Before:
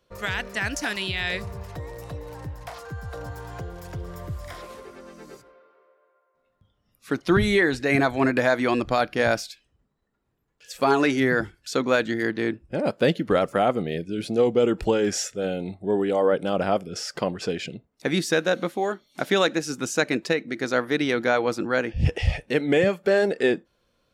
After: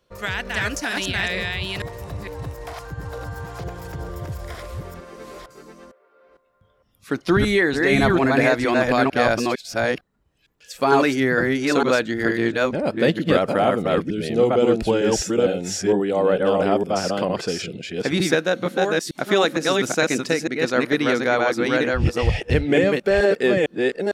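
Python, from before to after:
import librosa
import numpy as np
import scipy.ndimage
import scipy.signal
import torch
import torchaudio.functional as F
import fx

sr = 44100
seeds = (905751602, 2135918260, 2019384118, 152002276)

y = fx.reverse_delay(x, sr, ms=455, wet_db=-1.5)
y = F.gain(torch.from_numpy(y), 1.5).numpy()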